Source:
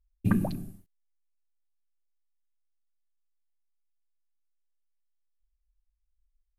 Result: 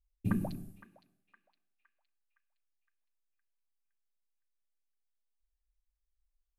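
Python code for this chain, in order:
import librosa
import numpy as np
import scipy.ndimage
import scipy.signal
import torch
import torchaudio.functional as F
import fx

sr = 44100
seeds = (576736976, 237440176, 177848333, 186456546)

y = fx.echo_banded(x, sr, ms=513, feedback_pct=54, hz=2200.0, wet_db=-14.0)
y = y * librosa.db_to_amplitude(-6.5)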